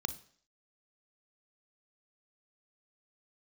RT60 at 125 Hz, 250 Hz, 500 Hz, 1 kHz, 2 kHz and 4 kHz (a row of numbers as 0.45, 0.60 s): 0.50, 0.55, 0.55, 0.55, 0.55, 0.55 s